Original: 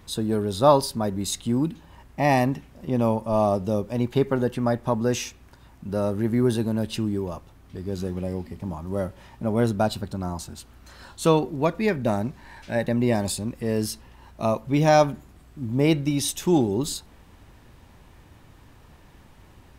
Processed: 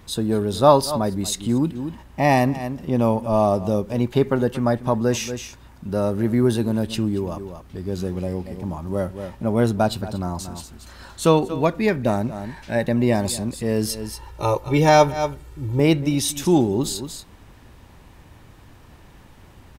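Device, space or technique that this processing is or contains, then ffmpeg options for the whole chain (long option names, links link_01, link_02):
ducked delay: -filter_complex "[0:a]asettb=1/sr,asplit=3[link_01][link_02][link_03];[link_01]atrim=end=13.894[link_04];[link_02]atrim=start=13.89:end=15.8,asetpts=PTS-STARTPTS,afade=type=in:duration=0.004:curve=qsin,afade=type=out:start_time=1.906:duration=0.004:curve=qsin,aecho=1:1:2.2:0.92,atrim=end_sample=84231[link_05];[link_03]atrim=start=15.796[link_06];[link_04][link_05]acrossfade=duration=0.004:curve1=hsin:curve2=qsin[link_07];[link_07][link_06]acrossfade=duration=0.004:curve1=qsin:curve2=hsin,asplit=3[link_08][link_09][link_10];[link_09]adelay=232,volume=-8dB[link_11];[link_10]apad=whole_len=882603[link_12];[link_11][link_12]sidechaincompress=threshold=-37dB:ratio=8:attack=33:release=119[link_13];[link_08][link_13]amix=inputs=2:normalize=0,volume=3dB"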